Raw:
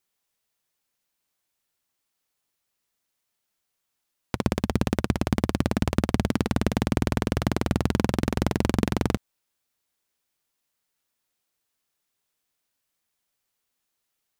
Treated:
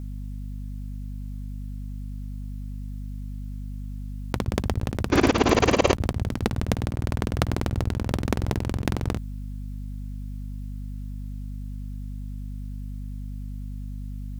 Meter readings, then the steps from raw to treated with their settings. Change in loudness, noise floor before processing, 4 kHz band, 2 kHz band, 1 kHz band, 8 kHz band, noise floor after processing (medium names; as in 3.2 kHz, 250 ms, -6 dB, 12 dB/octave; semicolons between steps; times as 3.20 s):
-3.0 dB, -80 dBFS, +3.0 dB, +3.0 dB, +3.0 dB, +2.5 dB, -34 dBFS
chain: hum 50 Hz, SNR 19 dB; spectral replace 5.13–5.89 s, 240–7300 Hz both; compressor with a negative ratio -30 dBFS, ratio -0.5; trim +8.5 dB